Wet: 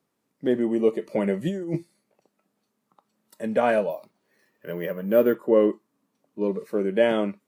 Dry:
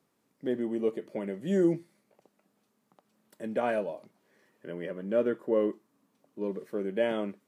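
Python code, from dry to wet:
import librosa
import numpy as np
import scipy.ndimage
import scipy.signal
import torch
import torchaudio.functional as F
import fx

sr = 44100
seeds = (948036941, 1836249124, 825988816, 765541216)

y = fx.noise_reduce_blind(x, sr, reduce_db=10)
y = fx.over_compress(y, sr, threshold_db=-33.0, ratio=-1.0, at=(1.06, 1.76), fade=0.02)
y = fx.resample_bad(y, sr, factor=3, down='none', up='hold', at=(3.9, 5.35))
y = F.gain(torch.from_numpy(y), 8.0).numpy()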